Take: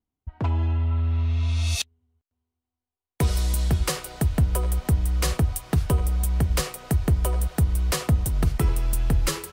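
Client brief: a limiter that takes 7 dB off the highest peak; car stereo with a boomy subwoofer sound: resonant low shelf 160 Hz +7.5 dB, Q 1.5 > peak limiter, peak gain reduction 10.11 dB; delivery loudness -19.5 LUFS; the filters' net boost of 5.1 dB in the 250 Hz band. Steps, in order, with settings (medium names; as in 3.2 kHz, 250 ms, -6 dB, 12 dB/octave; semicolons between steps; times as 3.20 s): peaking EQ 250 Hz +6.5 dB; peak limiter -15.5 dBFS; resonant low shelf 160 Hz +7.5 dB, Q 1.5; trim +4.5 dB; peak limiter -11.5 dBFS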